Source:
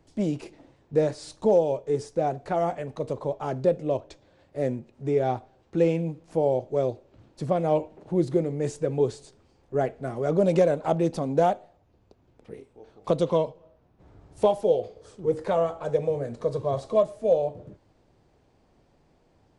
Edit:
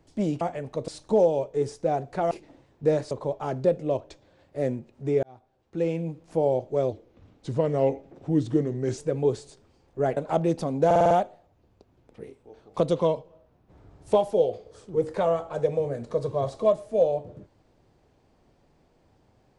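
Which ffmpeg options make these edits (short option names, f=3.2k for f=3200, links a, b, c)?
-filter_complex "[0:a]asplit=14[a][b][c][d][e][f][g][h][i][j][k][l][m][n];[a]atrim=end=0.412[o];[b]atrim=start=2.638:end=3.112[p];[c]atrim=start=1.208:end=2.642[q];[d]atrim=start=0.408:end=1.212[r];[e]atrim=start=3.108:end=5.23,asetpts=PTS-STARTPTS,afade=t=out:st=2.118:d=0.004:c=hsin[s];[f]atrim=start=5.23:end=6.924,asetpts=PTS-STARTPTS,afade=t=in:d=1.03[t];[g]atrim=start=6.92:end=8.73,asetpts=PTS-STARTPTS,asetrate=38808,aresample=44100[u];[h]atrim=start=8.726:end=9.922[v];[i]atrim=start=10.718:end=11.462[w];[j]atrim=start=11.408:end=11.462[x];[k]atrim=start=11.408:end=11.462[y];[l]atrim=start=11.408:end=11.462[z];[m]atrim=start=11.408:end=11.462[aa];[n]atrim=start=11.408[ab];[o][p]acrossfade=d=0.004:c1=hsin:c2=hsin[ac];[ac][q]acrossfade=d=0.004:c1=hsin:c2=hsin[ad];[ad][r]acrossfade=d=0.004:c1=hsin:c2=hsin[ae];[s][t]concat=n=2:v=0:a=1[af];[ae][af]acrossfade=d=0.004:c1=hsin:c2=hsin[ag];[ag][u]acrossfade=d=0.004:c1=hsin:c2=hsin[ah];[ah][v]acrossfade=d=0.004:c1=hsin:c2=hsin[ai];[ai][w]acrossfade=d=0.004:c1=hsin:c2=hsin[aj];[aj][x]acrossfade=d=0.004:c1=hsin:c2=hsin[ak];[ak][y]acrossfade=d=0.004:c1=hsin:c2=hsin[al];[al][z]acrossfade=d=0.004:c1=hsin:c2=hsin[am];[am][aa]acrossfade=d=0.004:c1=hsin:c2=hsin[an];[an][ab]acrossfade=d=0.004:c1=hsin:c2=hsin"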